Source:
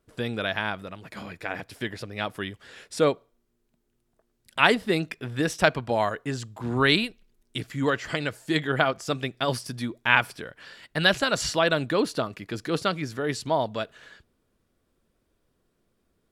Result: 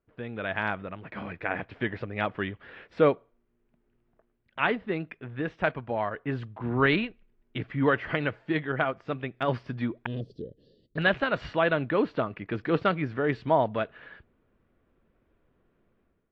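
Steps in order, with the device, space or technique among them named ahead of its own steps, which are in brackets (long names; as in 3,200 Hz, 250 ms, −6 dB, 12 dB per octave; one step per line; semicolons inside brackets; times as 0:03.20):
0:10.06–0:10.98: elliptic band-stop filter 460–4,300 Hz, stop band 40 dB
action camera in a waterproof case (low-pass filter 2,600 Hz 24 dB per octave; automatic gain control gain up to 12 dB; level −8.5 dB; AAC 48 kbit/s 32,000 Hz)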